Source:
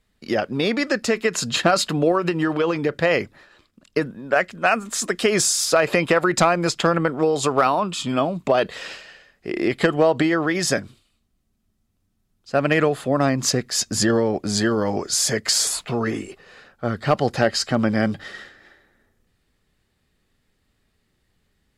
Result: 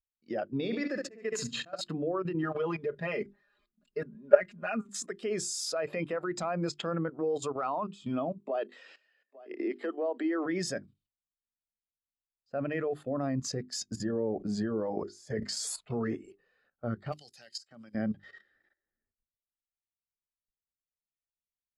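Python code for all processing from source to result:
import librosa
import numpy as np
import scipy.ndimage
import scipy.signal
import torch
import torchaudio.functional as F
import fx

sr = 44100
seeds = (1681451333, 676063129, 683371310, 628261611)

y = fx.chain(x, sr, fx.room_flutter(wall_m=11.8, rt60_s=0.59),
    fx.auto_swell(attack_ms=292.0), at=(0.53, 1.81))
y = fx.chain(y, sr, fx.law_mismatch(coded='mu'),
    fx.comb(ms=4.9, depth=0.8), at=(2.43, 4.83))
y = fx.chain(y, sr, fx.cheby1_highpass(hz=210.0, order=8),
    fx.echo_single(ms=854, db=-18.5), at=(8.38, 10.46))
y = fx.chain(y, sr, fx.high_shelf(hz=2400.0, db=-7.5),
    fx.sustainer(db_per_s=55.0), at=(13.96, 15.57))
y = fx.chain(y, sr, fx.pre_emphasis(coefficient=0.9),
    fx.band_squash(depth_pct=100), at=(17.12, 17.95))
y = fx.level_steps(y, sr, step_db=13)
y = fx.hum_notches(y, sr, base_hz=50, count=8)
y = fx.spectral_expand(y, sr, expansion=1.5)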